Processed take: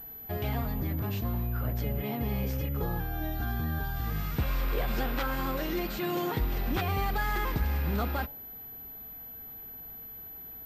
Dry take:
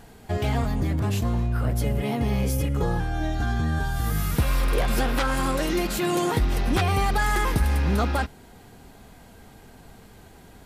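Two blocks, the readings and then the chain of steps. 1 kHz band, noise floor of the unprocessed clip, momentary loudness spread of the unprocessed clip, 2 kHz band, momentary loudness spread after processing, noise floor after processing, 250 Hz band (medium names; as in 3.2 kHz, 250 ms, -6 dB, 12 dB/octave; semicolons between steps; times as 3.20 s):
-7.0 dB, -49 dBFS, 4 LU, -7.0 dB, 11 LU, -45 dBFS, -7.0 dB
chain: de-hum 94.54 Hz, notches 11; class-D stage that switches slowly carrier 12 kHz; trim -7 dB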